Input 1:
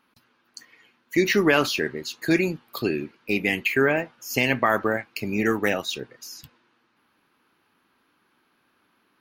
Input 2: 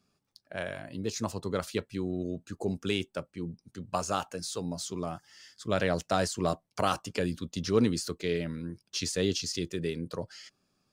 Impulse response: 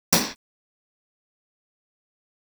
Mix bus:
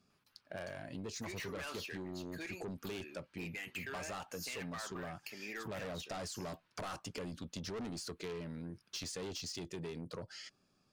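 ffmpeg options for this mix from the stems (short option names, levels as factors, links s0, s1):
-filter_complex "[0:a]highpass=f=1100:p=1,asoftclip=type=hard:threshold=0.1,adelay=100,volume=0.299[s0];[1:a]highshelf=f=9600:g=-7.5,volume=1[s1];[s0][s1]amix=inputs=2:normalize=0,asoftclip=type=tanh:threshold=0.0266,acompressor=threshold=0.00891:ratio=6"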